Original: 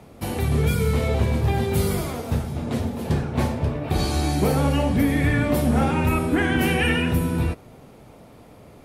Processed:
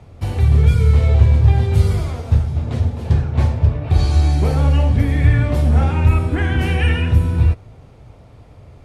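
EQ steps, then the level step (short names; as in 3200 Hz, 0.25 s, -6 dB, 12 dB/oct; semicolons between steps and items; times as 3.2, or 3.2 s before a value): LPF 7200 Hz 12 dB/oct; resonant low shelf 140 Hz +10.5 dB, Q 1.5; -1.0 dB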